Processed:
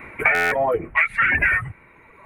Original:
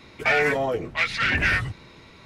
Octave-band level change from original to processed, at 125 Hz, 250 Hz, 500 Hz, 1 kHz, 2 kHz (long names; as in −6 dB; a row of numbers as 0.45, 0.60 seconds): −3.0, −2.0, +1.5, +4.0, +4.5 decibels